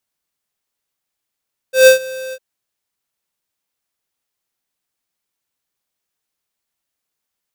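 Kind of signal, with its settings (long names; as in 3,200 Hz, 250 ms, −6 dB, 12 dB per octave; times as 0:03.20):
note with an ADSR envelope square 521 Hz, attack 139 ms, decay 115 ms, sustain −22 dB, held 0.60 s, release 54 ms −4.5 dBFS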